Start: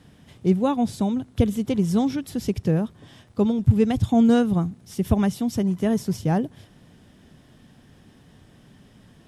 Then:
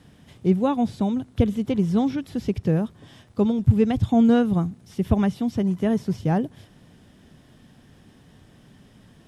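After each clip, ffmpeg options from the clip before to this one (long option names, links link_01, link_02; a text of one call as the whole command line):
ffmpeg -i in.wav -filter_complex "[0:a]acrossover=split=4100[link_01][link_02];[link_02]acompressor=threshold=-53dB:ratio=4:attack=1:release=60[link_03];[link_01][link_03]amix=inputs=2:normalize=0" out.wav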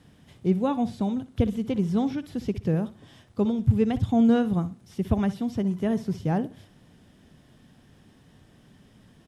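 ffmpeg -i in.wav -af "aecho=1:1:61|122|183:0.168|0.0436|0.0113,volume=-3.5dB" out.wav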